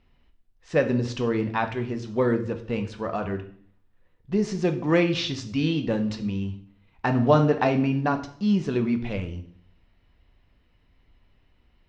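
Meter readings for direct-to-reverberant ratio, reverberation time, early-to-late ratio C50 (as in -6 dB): 6.0 dB, 0.55 s, 12.0 dB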